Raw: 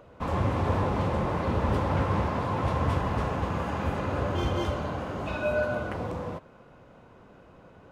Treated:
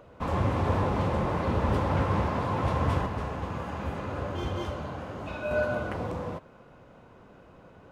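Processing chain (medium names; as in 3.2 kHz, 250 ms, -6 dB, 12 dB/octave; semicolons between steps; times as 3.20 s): 3.06–5.51 s: flange 1.9 Hz, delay 7.6 ms, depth 8 ms, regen +81%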